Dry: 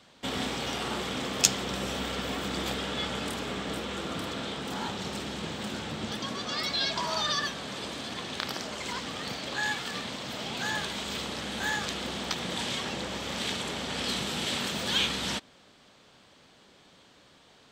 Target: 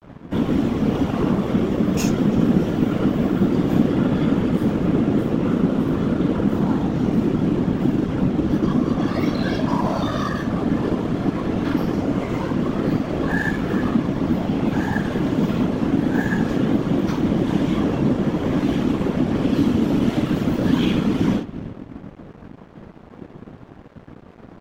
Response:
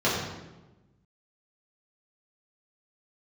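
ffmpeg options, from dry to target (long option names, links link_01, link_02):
-filter_complex "[0:a]equalizer=frequency=125:width_type=o:width=1:gain=10,equalizer=frequency=250:width_type=o:width=1:gain=8,equalizer=frequency=4000:width_type=o:width=1:gain=-11,equalizer=frequency=8000:width_type=o:width=1:gain=-9,acrossover=split=170|3000[link_01][link_02][link_03];[link_02]acompressor=threshold=-37dB:ratio=10[link_04];[link_01][link_04][link_03]amix=inputs=3:normalize=0,equalizer=frequency=4600:width_type=o:width=2.4:gain=-8.5,atempo=0.72,asplit=2[link_05][link_06];[link_06]adelay=329,lowpass=frequency=2100:poles=1,volume=-15dB,asplit=2[link_07][link_08];[link_08]adelay=329,lowpass=frequency=2100:poles=1,volume=0.39,asplit=2[link_09][link_10];[link_10]adelay=329,lowpass=frequency=2100:poles=1,volume=0.39,asplit=2[link_11][link_12];[link_12]adelay=329,lowpass=frequency=2100:poles=1,volume=0.39[link_13];[link_05][link_07][link_09][link_11][link_13]amix=inputs=5:normalize=0[link_14];[1:a]atrim=start_sample=2205,atrim=end_sample=3969[link_15];[link_14][link_15]afir=irnorm=-1:irlink=0,afftfilt=real='hypot(re,im)*cos(2*PI*random(0))':imag='hypot(re,im)*sin(2*PI*random(1))':win_size=512:overlap=0.75,acrossover=split=210|550|4900[link_16][link_17][link_18][link_19];[link_16]acompressor=threshold=-34dB:ratio=6[link_20];[link_20][link_17][link_18][link_19]amix=inputs=4:normalize=0,aeval=exprs='sgn(val(0))*max(abs(val(0))-0.00398,0)':channel_layout=same,volume=7.5dB"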